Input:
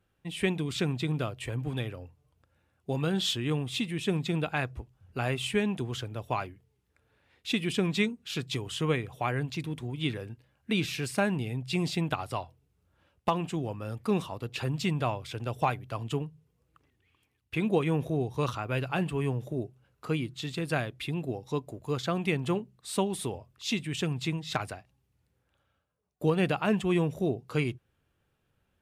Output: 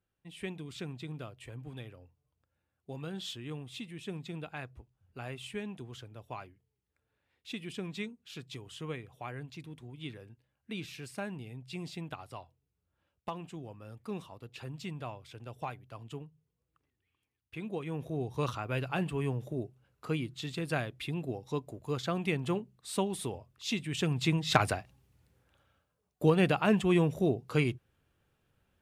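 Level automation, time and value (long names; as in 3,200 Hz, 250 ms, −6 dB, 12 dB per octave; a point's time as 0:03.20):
0:17.81 −11.5 dB
0:18.34 −3 dB
0:23.82 −3 dB
0:24.71 +8 dB
0:26.44 +0.5 dB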